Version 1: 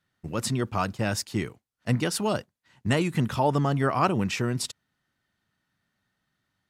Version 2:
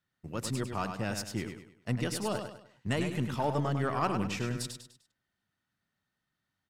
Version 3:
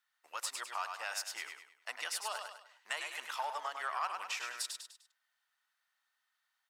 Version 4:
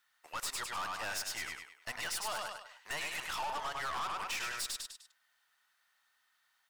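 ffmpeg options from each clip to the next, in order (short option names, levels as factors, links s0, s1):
-filter_complex "[0:a]aeval=exprs='0.355*(cos(1*acos(clip(val(0)/0.355,-1,1)))-cos(1*PI/2))+0.01*(cos(8*acos(clip(val(0)/0.355,-1,1)))-cos(8*PI/2))':c=same,asplit=2[s0][s1];[s1]aecho=0:1:101|202|303|404:0.447|0.165|0.0612|0.0226[s2];[s0][s2]amix=inputs=2:normalize=0,volume=0.422"
-af "highpass=f=840:w=0.5412,highpass=f=840:w=1.3066,acompressor=threshold=0.00891:ratio=2,volume=1.5"
-af "aeval=exprs='(tanh(141*val(0)+0.35)-tanh(0.35))/141':c=same,volume=2.66"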